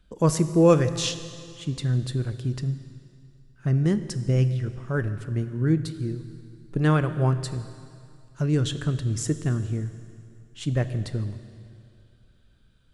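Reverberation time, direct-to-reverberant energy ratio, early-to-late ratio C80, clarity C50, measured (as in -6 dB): 2.4 s, 11.0 dB, 12.5 dB, 12.0 dB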